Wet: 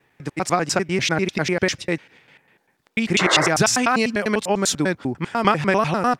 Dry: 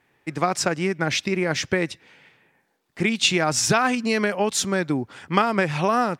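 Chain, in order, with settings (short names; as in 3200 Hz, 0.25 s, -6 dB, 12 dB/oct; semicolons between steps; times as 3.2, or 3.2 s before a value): slices in reverse order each 99 ms, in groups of 2; painted sound noise, 3.19–3.49, 290–2200 Hz -23 dBFS; gain +2 dB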